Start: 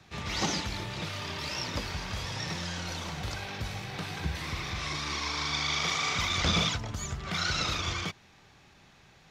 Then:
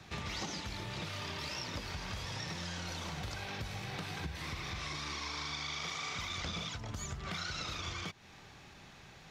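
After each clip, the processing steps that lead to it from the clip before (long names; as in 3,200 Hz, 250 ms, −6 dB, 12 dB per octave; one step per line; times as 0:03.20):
downward compressor 6 to 1, threshold −41 dBFS, peak gain reduction 17 dB
level +3 dB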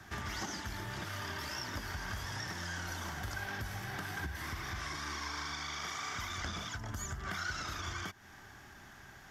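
thirty-one-band graphic EQ 160 Hz −9 dB, 500 Hz −9 dB, 1,600 Hz +8 dB, 2,500 Hz −9 dB, 4,000 Hz −10 dB, 12,500 Hz +11 dB
level +1.5 dB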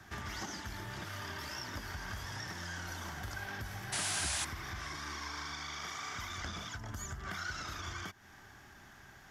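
sound drawn into the spectrogram noise, 0:03.92–0:04.45, 570–11,000 Hz −34 dBFS
level −2 dB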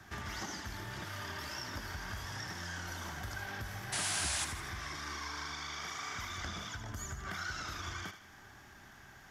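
feedback echo with a high-pass in the loop 80 ms, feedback 50%, level −10 dB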